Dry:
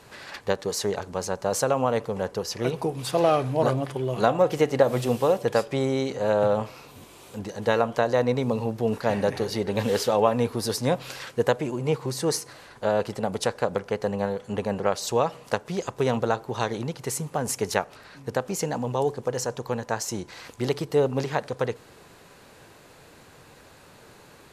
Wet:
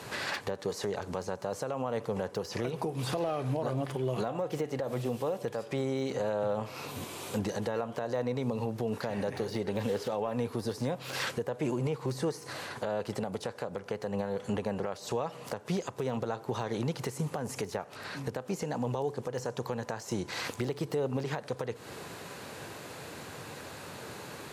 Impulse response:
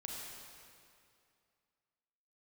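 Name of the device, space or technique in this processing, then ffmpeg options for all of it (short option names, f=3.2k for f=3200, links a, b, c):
podcast mastering chain: -af "highpass=f=79:w=0.5412,highpass=f=79:w=1.3066,deesser=1,acompressor=threshold=-34dB:ratio=2.5,alimiter=level_in=5.5dB:limit=-24dB:level=0:latency=1:release=253,volume=-5.5dB,volume=7.5dB" -ar 48000 -c:a libmp3lame -b:a 112k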